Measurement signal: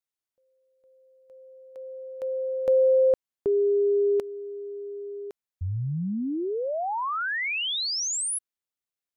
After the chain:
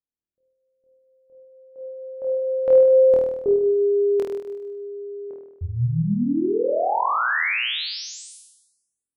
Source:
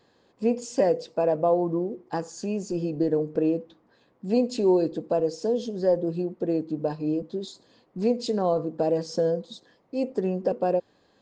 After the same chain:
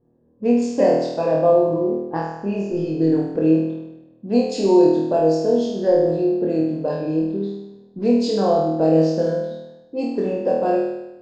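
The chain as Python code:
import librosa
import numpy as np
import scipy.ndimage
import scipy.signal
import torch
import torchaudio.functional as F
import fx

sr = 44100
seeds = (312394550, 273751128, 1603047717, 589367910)

y = fx.env_lowpass(x, sr, base_hz=340.0, full_db=-21.0)
y = fx.room_flutter(y, sr, wall_m=4.3, rt60_s=0.94)
y = y * librosa.db_to_amplitude(2.0)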